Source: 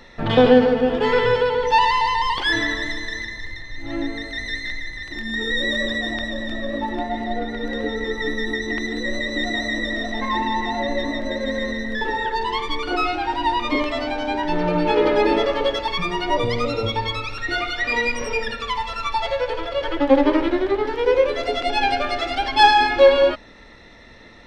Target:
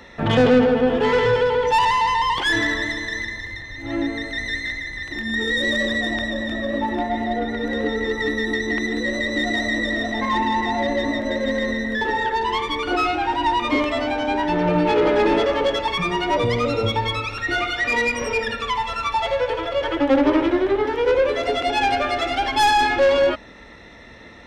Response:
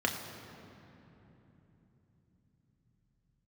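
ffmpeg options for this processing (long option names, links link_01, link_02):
-filter_complex "[0:a]highpass=41,equalizer=frequency=4500:width=3.5:gain=-6.5,acrossover=split=240[link_01][link_02];[link_02]asoftclip=type=tanh:threshold=-16.5dB[link_03];[link_01][link_03]amix=inputs=2:normalize=0,volume=3dB"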